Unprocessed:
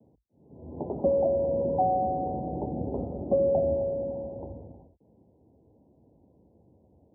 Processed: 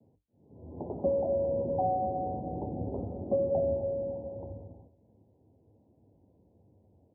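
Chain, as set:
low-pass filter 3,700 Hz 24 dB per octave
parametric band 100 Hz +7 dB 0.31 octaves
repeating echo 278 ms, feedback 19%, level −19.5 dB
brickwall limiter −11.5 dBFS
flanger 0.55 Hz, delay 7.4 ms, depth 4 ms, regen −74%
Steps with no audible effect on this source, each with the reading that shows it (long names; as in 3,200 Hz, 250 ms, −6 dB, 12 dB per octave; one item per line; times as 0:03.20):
low-pass filter 3,700 Hz: nothing at its input above 850 Hz
brickwall limiter −11.5 dBFS: peak of its input −14.0 dBFS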